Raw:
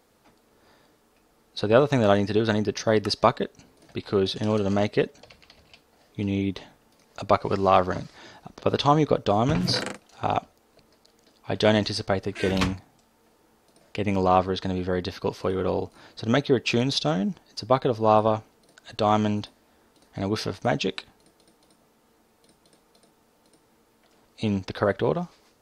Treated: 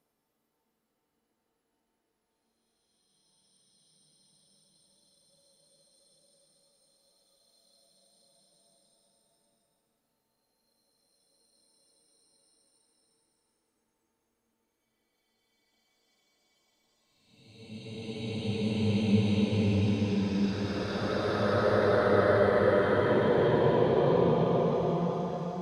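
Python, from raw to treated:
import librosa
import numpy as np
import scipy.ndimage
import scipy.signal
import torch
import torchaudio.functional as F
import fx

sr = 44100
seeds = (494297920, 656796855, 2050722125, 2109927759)

y = fx.spec_quant(x, sr, step_db=15)
y = fx.noise_reduce_blind(y, sr, reduce_db=17)
y = fx.paulstretch(y, sr, seeds[0], factor=7.6, window_s=0.5, from_s=21.93)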